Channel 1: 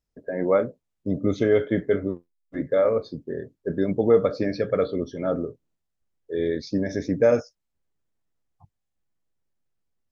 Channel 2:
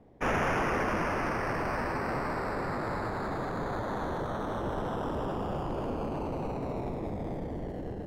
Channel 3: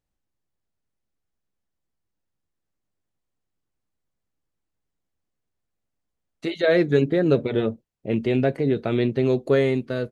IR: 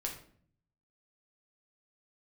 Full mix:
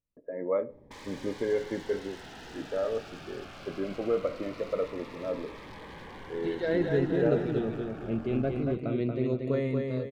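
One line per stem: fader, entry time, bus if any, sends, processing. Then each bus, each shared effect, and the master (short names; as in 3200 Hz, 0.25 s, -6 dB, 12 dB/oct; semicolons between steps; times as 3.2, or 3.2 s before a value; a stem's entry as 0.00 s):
-6.0 dB, 0.00 s, send -14.5 dB, no echo send, gate with hold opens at -44 dBFS; tone controls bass -13 dB, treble -15 dB
-1.0 dB, 0.70 s, send -7.5 dB, no echo send, limiter -25.5 dBFS, peak gain reduction 6 dB; wavefolder -38.5 dBFS
-7.5 dB, 0.00 s, no send, echo send -4.5 dB, dry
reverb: on, RT60 0.55 s, pre-delay 6 ms
echo: feedback echo 0.232 s, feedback 41%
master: high shelf 2900 Hz -11 dB; cascading phaser falling 0.21 Hz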